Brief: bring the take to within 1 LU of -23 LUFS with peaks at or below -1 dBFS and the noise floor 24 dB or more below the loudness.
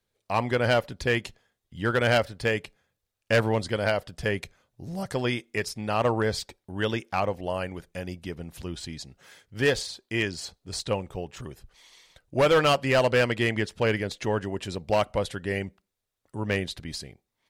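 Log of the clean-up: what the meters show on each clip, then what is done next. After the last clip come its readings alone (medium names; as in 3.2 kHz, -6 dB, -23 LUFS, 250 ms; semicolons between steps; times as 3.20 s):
clipped samples 0.7%; clipping level -15.5 dBFS; loudness -27.0 LUFS; peak level -15.5 dBFS; loudness target -23.0 LUFS
-> clip repair -15.5 dBFS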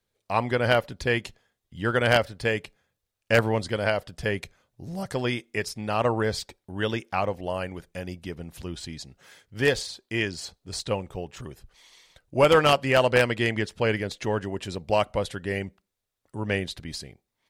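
clipped samples 0.0%; loudness -26.0 LUFS; peak level -6.5 dBFS; loudness target -23.0 LUFS
-> trim +3 dB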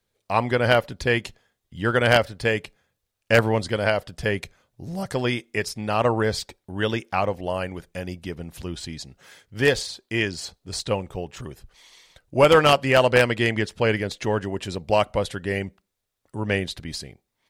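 loudness -23.0 LUFS; peak level -3.5 dBFS; noise floor -79 dBFS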